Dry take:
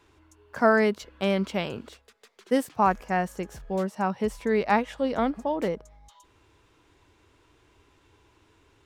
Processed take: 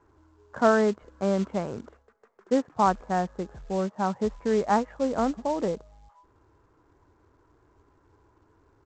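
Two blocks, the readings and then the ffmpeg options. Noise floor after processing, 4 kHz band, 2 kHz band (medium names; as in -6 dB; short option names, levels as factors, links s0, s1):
-64 dBFS, -5.0 dB, -5.0 dB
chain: -af "lowpass=f=1500:w=0.5412,lowpass=f=1500:w=1.3066,aresample=16000,acrusher=bits=5:mode=log:mix=0:aa=0.000001,aresample=44100"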